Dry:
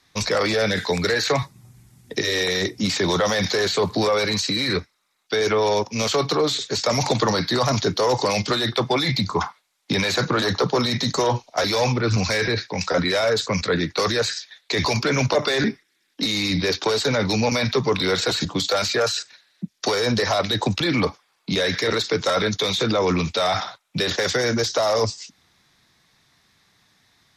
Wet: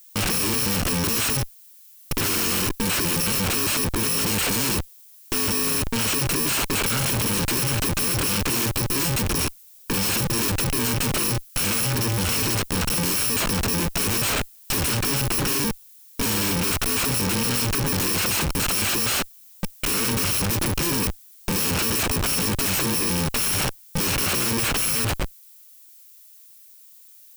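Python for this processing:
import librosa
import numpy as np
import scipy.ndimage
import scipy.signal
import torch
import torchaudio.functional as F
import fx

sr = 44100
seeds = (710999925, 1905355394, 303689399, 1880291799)

y = fx.bit_reversed(x, sr, seeds[0], block=64)
y = fx.schmitt(y, sr, flips_db=-29.0)
y = fx.dmg_noise_colour(y, sr, seeds[1], colour='violet', level_db=-49.0)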